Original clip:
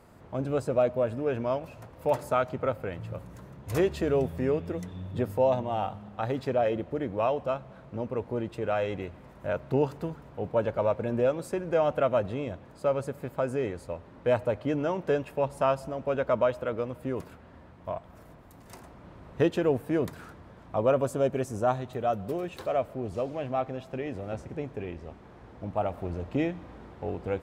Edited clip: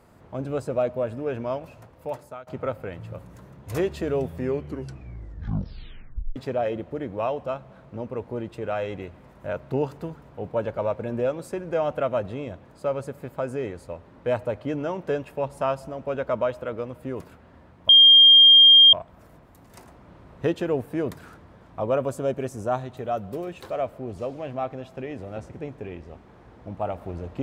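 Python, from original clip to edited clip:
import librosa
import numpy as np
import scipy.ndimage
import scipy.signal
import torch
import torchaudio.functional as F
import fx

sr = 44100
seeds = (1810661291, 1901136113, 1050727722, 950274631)

y = fx.edit(x, sr, fx.fade_out_to(start_s=1.68, length_s=0.79, floor_db=-21.0),
    fx.tape_stop(start_s=4.41, length_s=1.95),
    fx.insert_tone(at_s=17.89, length_s=1.04, hz=3210.0, db=-8.5), tone=tone)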